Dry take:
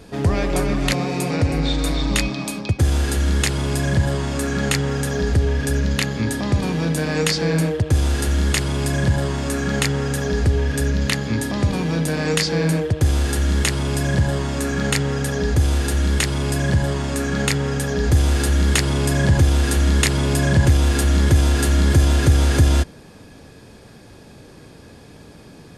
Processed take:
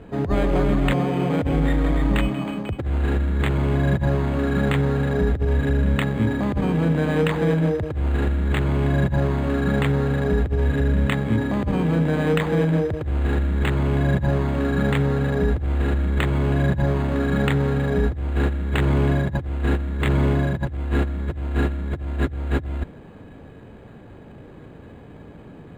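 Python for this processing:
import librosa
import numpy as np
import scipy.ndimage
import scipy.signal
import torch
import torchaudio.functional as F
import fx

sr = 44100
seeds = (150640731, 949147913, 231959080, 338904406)

y = fx.air_absorb(x, sr, metres=220.0)
y = fx.over_compress(y, sr, threshold_db=-19.0, ratio=-0.5)
y = np.interp(np.arange(len(y)), np.arange(len(y))[::8], y[::8])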